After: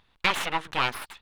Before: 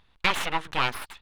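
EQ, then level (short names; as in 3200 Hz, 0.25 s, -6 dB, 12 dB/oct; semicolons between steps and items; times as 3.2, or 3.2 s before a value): low shelf 91 Hz -6 dB; 0.0 dB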